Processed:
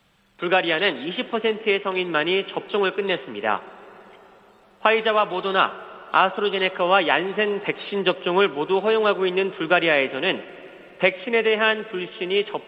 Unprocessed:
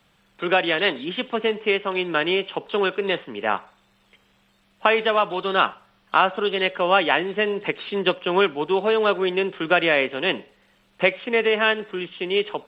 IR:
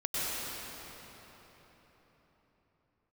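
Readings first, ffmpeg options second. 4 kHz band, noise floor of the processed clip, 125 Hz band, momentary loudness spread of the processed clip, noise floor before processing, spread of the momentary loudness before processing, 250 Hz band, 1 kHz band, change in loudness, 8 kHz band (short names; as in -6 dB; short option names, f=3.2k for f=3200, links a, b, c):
0.0 dB, -54 dBFS, +0.5 dB, 8 LU, -62 dBFS, 7 LU, +0.5 dB, +0.5 dB, +0.5 dB, n/a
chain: -filter_complex "[0:a]asplit=2[a][b];[1:a]atrim=start_sample=2205,lowpass=2.9k[c];[b][c]afir=irnorm=-1:irlink=0,volume=-25.5dB[d];[a][d]amix=inputs=2:normalize=0"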